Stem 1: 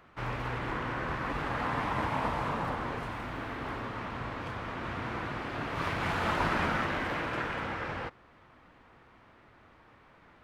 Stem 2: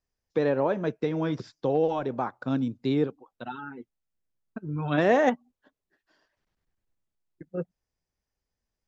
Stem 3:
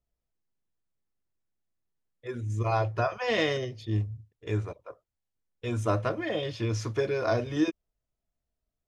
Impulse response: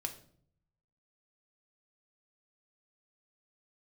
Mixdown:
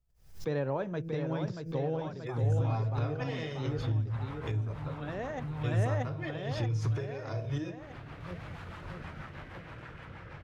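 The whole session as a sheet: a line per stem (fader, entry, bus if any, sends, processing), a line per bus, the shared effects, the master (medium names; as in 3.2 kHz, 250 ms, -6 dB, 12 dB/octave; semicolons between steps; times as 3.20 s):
-6.0 dB, 2.45 s, bus A, send -19 dB, no echo send, compression 2:1, threshold -43 dBFS, peak gain reduction 10 dB; rotary cabinet horn 6.3 Hz
-7.5 dB, 0.10 s, no bus, no send, echo send -6.5 dB, treble shelf 7.8 kHz +7 dB; de-hum 163.8 Hz, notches 3; auto duck -9 dB, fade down 0.50 s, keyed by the third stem
-3.0 dB, 0.00 s, bus A, send -10.5 dB, no echo send, none
bus A: 0.0 dB, inverted gate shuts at -24 dBFS, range -28 dB; compression, threshold -39 dBFS, peak gain reduction 9.5 dB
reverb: on, RT60 0.60 s, pre-delay 5 ms
echo: feedback delay 632 ms, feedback 56%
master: resonant low shelf 180 Hz +7.5 dB, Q 1.5; swell ahead of each attack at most 120 dB/s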